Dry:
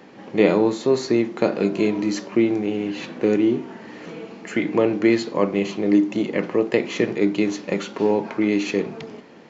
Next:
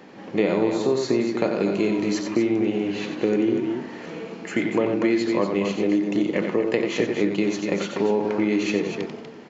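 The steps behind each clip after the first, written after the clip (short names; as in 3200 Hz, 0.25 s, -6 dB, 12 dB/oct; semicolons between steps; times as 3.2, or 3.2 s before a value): on a send: loudspeakers at several distances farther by 31 m -7 dB, 83 m -8 dB; on the sum: compressor 3:1, threshold -18 dBFS, peak gain reduction 6.5 dB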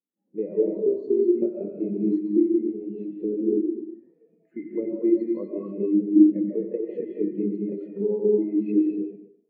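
reverb RT60 1.1 s, pre-delay 0.11 s, DRR -0.5 dB; spectral expander 2.5:1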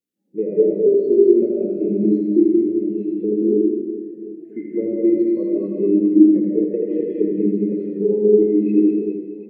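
fifteen-band EQ 100 Hz +6 dB, 400 Hz +3 dB, 1000 Hz -12 dB; on a send: reverse bouncing-ball echo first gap 80 ms, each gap 1.6×, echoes 5; on the sum: gain +4 dB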